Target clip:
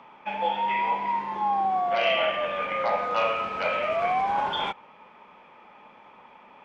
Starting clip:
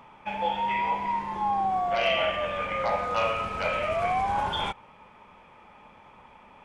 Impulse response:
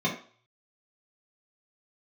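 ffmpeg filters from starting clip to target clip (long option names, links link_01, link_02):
-filter_complex "[0:a]acrossover=split=180 5600:gain=0.141 1 0.126[link_01][link_02][link_03];[link_01][link_02][link_03]amix=inputs=3:normalize=0,volume=1.5dB"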